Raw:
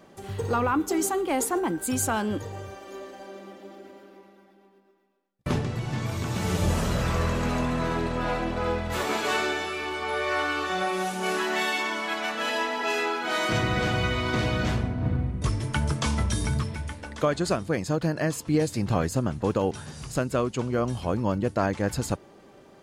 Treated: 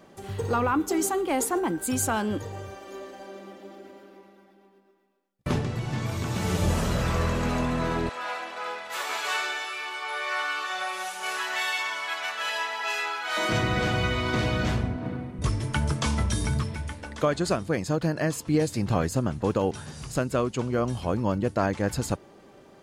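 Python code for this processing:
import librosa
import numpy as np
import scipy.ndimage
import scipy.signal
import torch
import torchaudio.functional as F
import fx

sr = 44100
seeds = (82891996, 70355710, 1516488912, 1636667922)

y = fx.highpass(x, sr, hz=890.0, slope=12, at=(8.09, 13.37))
y = fx.highpass(y, sr, hz=200.0, slope=12, at=(14.96, 15.39))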